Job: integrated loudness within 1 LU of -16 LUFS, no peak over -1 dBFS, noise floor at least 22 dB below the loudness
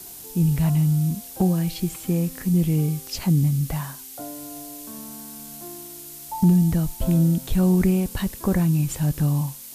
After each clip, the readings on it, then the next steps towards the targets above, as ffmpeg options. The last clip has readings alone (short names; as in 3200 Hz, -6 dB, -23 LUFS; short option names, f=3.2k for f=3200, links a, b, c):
noise floor -40 dBFS; noise floor target -44 dBFS; loudness -22.0 LUFS; peak -9.5 dBFS; loudness target -16.0 LUFS
-> -af "afftdn=nr=6:nf=-40"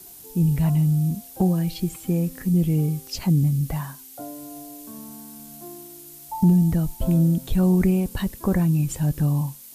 noise floor -44 dBFS; loudness -22.0 LUFS; peak -9.5 dBFS; loudness target -16.0 LUFS
-> -af "volume=6dB"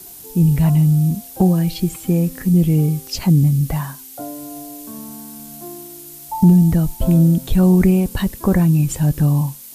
loudness -16.0 LUFS; peak -3.5 dBFS; noise floor -38 dBFS